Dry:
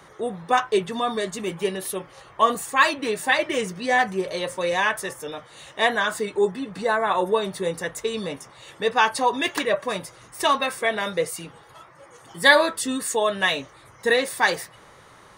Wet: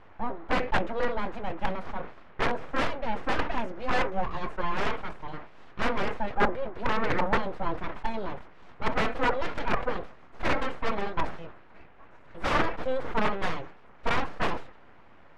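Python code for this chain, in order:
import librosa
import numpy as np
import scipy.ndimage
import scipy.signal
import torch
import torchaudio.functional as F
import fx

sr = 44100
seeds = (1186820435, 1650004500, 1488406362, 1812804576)

y = np.abs(x)
y = fx.dynamic_eq(y, sr, hz=490.0, q=4.5, threshold_db=-48.0, ratio=4.0, max_db=8)
y = (np.mod(10.0 ** (13.5 / 20.0) * y + 1.0, 2.0) - 1.0) / 10.0 ** (13.5 / 20.0)
y = scipy.signal.sosfilt(scipy.signal.butter(2, 1600.0, 'lowpass', fs=sr, output='sos'), y)
y = fx.sustainer(y, sr, db_per_s=120.0)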